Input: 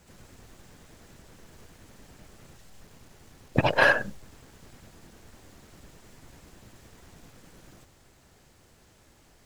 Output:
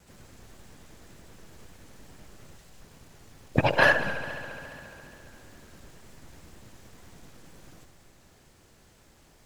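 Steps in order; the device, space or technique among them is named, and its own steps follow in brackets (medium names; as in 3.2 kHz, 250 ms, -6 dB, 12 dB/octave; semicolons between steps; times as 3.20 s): multi-head tape echo (multi-head delay 69 ms, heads first and third, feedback 73%, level -16 dB; wow and flutter)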